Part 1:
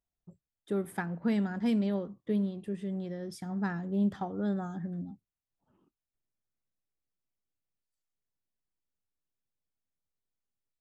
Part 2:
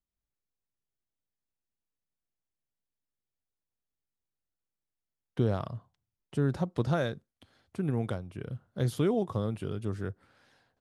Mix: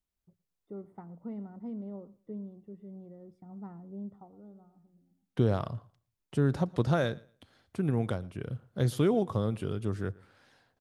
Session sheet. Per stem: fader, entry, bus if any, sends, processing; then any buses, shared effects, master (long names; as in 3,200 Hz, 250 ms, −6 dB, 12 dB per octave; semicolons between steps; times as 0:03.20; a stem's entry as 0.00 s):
−11.0 dB, 0.00 s, no send, echo send −22.5 dB, Savitzky-Golay smoothing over 65 samples; automatic ducking −24 dB, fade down 1.45 s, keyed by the second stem
+1.5 dB, 0.00 s, no send, echo send −23.5 dB, no processing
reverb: not used
echo: repeating echo 115 ms, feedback 21%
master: no processing